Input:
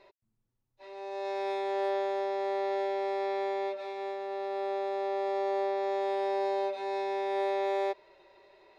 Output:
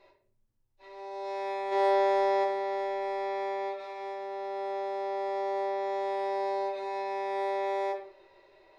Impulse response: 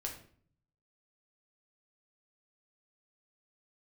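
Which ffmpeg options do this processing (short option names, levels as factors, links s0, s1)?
-filter_complex "[0:a]asplit=3[s0][s1][s2];[s0]afade=t=out:st=1.71:d=0.02[s3];[s1]acontrast=76,afade=t=in:st=1.71:d=0.02,afade=t=out:st=2.43:d=0.02[s4];[s2]afade=t=in:st=2.43:d=0.02[s5];[s3][s4][s5]amix=inputs=3:normalize=0[s6];[1:a]atrim=start_sample=2205[s7];[s6][s7]afir=irnorm=-1:irlink=0"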